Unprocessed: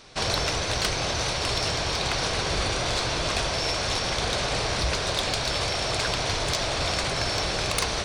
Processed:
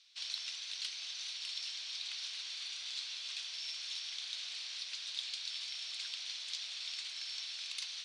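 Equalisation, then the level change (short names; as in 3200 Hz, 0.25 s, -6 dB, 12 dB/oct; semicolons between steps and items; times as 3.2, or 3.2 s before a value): ladder band-pass 4200 Hz, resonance 35%; -2.5 dB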